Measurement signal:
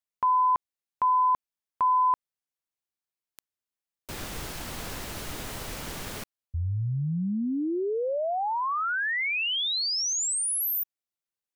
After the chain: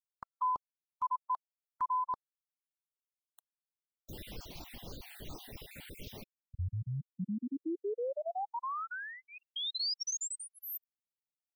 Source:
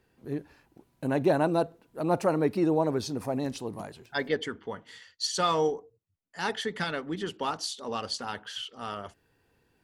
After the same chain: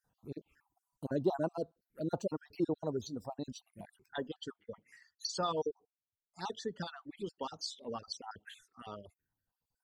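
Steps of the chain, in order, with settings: random spectral dropouts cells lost 39%; envelope phaser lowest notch 360 Hz, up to 2200 Hz, full sweep at -32.5 dBFS; reverb removal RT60 1.9 s; gain -5 dB

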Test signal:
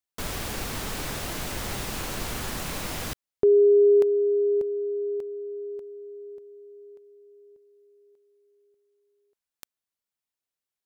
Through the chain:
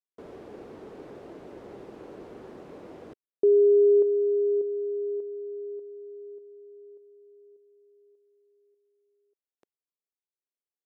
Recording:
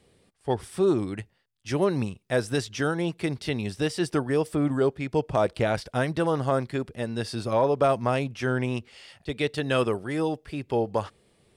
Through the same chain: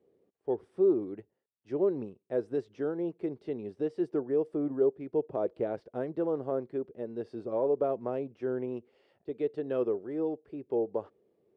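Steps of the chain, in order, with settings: band-pass 400 Hz, Q 2.2; gain -1.5 dB

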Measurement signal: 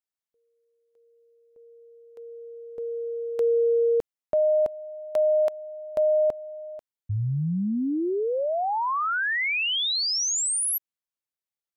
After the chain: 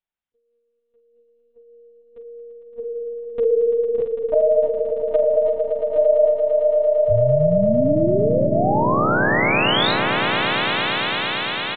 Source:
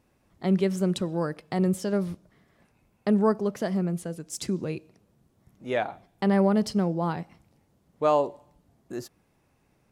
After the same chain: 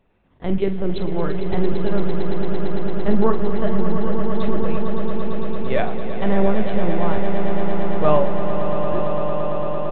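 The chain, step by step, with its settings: LPC vocoder at 8 kHz pitch kept; doubler 46 ms -11 dB; swelling echo 0.113 s, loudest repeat 8, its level -10 dB; gain +4 dB

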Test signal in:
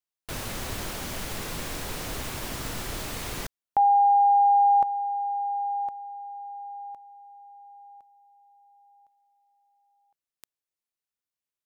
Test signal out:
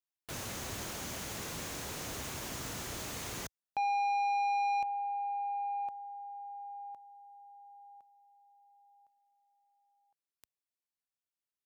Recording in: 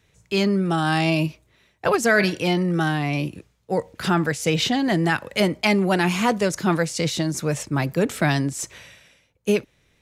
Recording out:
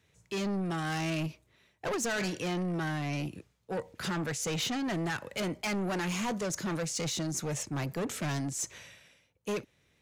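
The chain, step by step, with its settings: HPF 62 Hz; soft clip -23 dBFS; dynamic EQ 6500 Hz, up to +6 dB, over -53 dBFS, Q 3.6; gain -6 dB

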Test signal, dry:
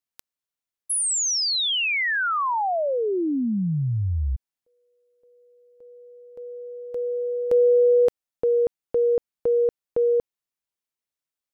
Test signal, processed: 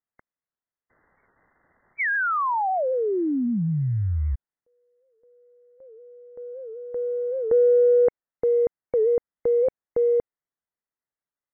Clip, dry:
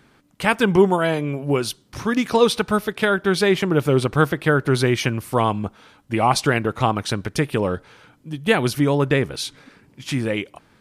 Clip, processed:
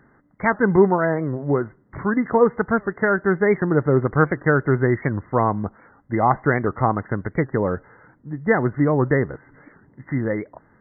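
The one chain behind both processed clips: short-mantissa float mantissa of 4-bit; brick-wall FIR low-pass 2100 Hz; record warp 78 rpm, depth 160 cents

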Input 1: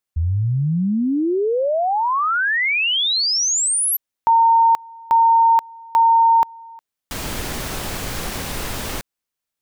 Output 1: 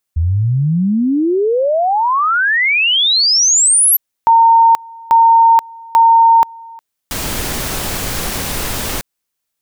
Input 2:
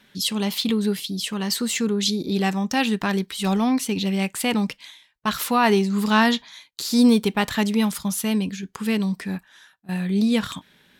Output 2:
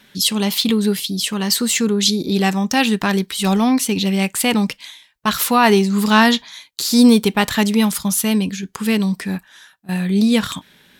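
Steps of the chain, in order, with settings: high shelf 5100 Hz +4.5 dB; gain +5 dB

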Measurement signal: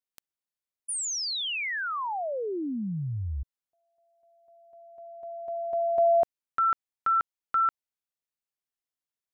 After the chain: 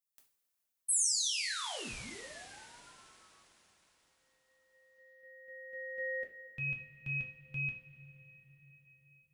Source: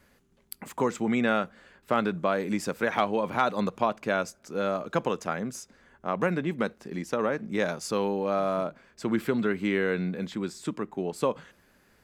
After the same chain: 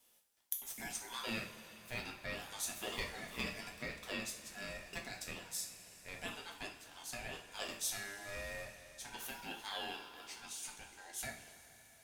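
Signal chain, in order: differentiator; ring modulator 1200 Hz; two-slope reverb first 0.38 s, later 4.7 s, from -18 dB, DRR -0.5 dB; gain +1 dB

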